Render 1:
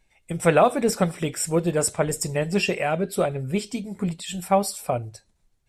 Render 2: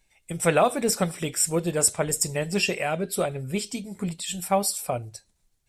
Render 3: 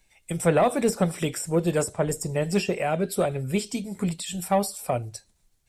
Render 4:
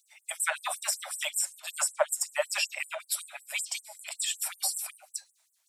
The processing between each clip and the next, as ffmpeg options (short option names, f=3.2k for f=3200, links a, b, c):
-af "highshelf=f=3.4k:g=9,volume=-3.5dB"
-filter_complex "[0:a]acrossover=split=340|1200[a][b][c];[b]asoftclip=type=tanh:threshold=-19dB[d];[c]acompressor=threshold=-35dB:ratio=6[e];[a][d][e]amix=inputs=3:normalize=0,volume=3dB"
-af "aeval=exprs='0.335*(cos(1*acos(clip(val(0)/0.335,-1,1)))-cos(1*PI/2))+0.00473*(cos(5*acos(clip(val(0)/0.335,-1,1)))-cos(5*PI/2))':c=same,afftfilt=real='re*gte(b*sr/1024,540*pow(7800/540,0.5+0.5*sin(2*PI*5.3*pts/sr)))':imag='im*gte(b*sr/1024,540*pow(7800/540,0.5+0.5*sin(2*PI*5.3*pts/sr)))':win_size=1024:overlap=0.75,volume=3.5dB"